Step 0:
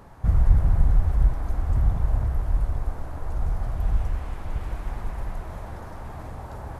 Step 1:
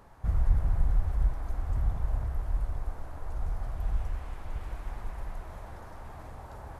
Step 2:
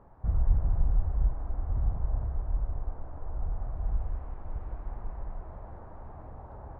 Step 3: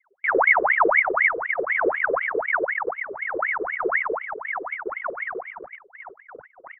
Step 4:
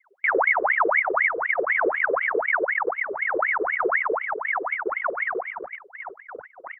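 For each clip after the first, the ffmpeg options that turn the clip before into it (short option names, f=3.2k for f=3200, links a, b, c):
-af "equalizer=f=160:t=o:w=2.7:g=-4.5,volume=-5.5dB"
-af "lowpass=1k"
-af "agate=range=-12dB:threshold=-42dB:ratio=16:detection=peak,anlmdn=0.398,aeval=exprs='val(0)*sin(2*PI*1300*n/s+1300*0.7/4*sin(2*PI*4*n/s))':c=same,volume=7dB"
-af "bass=f=250:g=-7,treble=f=4k:g=-4,acompressor=threshold=-25dB:ratio=2.5,volume=4.5dB"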